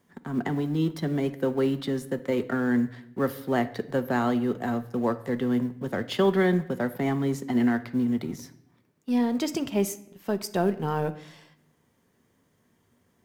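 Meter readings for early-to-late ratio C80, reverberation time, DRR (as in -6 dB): 18.5 dB, 0.70 s, 10.0 dB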